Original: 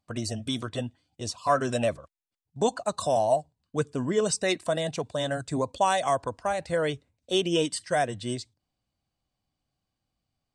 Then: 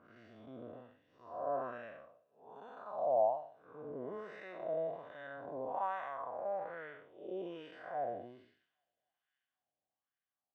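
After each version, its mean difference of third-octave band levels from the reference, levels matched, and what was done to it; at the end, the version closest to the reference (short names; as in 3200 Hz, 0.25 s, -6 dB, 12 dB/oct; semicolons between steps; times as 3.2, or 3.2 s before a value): 11.5 dB: time blur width 0.261 s; tape spacing loss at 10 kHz 33 dB; thin delay 0.267 s, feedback 68%, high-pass 3600 Hz, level -16.5 dB; LFO band-pass sine 1.2 Hz 590–1700 Hz; gain +1 dB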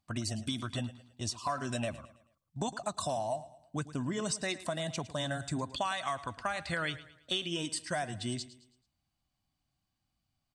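6.0 dB: spectral gain 5.66–7.54, 1100–4900 Hz +7 dB; bell 470 Hz -13 dB 0.54 oct; compressor 6:1, threshold -31 dBFS, peak gain reduction 13 dB; on a send: feedback echo 0.109 s, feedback 41%, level -16 dB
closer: second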